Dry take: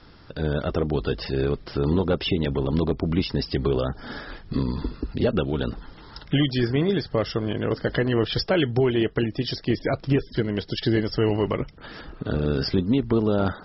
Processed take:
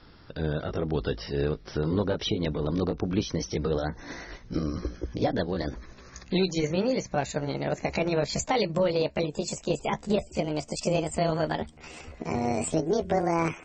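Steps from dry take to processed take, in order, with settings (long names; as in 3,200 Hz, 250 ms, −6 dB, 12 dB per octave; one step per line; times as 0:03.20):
pitch glide at a constant tempo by +9 semitones starting unshifted
level −3 dB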